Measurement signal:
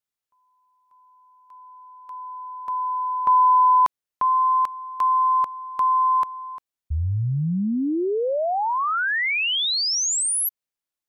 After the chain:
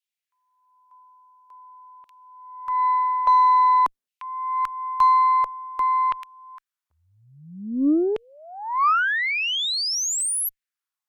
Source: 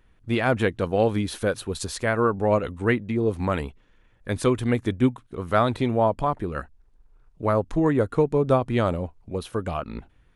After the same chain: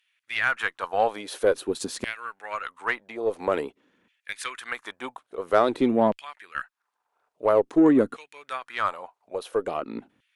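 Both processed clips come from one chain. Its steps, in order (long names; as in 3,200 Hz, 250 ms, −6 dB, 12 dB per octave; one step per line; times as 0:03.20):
auto-filter high-pass saw down 0.49 Hz 200–2,900 Hz
harmonic generator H 8 −33 dB, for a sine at −3.5 dBFS
level −2 dB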